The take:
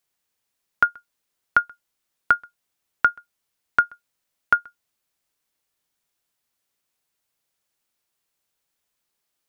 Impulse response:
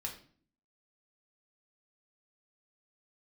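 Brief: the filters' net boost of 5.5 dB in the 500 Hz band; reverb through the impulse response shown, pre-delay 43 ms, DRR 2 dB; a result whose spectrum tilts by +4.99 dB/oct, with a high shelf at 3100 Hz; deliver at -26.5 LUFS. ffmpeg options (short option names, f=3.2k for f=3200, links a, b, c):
-filter_complex "[0:a]equalizer=f=500:t=o:g=7,highshelf=f=3.1k:g=-6,asplit=2[a][b];[1:a]atrim=start_sample=2205,adelay=43[c];[b][c]afir=irnorm=-1:irlink=0,volume=-1.5dB[d];[a][d]amix=inputs=2:normalize=0,volume=-4dB"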